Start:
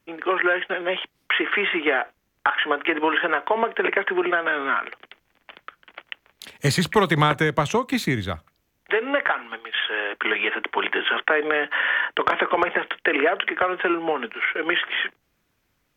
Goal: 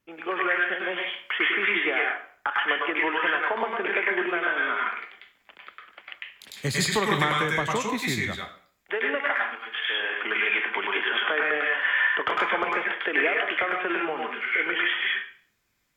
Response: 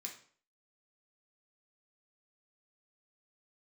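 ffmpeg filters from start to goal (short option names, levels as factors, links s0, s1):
-filter_complex "[0:a]asplit=2[s0][s1];[s1]tiltshelf=f=660:g=-5.5[s2];[1:a]atrim=start_sample=2205,adelay=100[s3];[s2][s3]afir=irnorm=-1:irlink=0,volume=1.58[s4];[s0][s4]amix=inputs=2:normalize=0,volume=0.422"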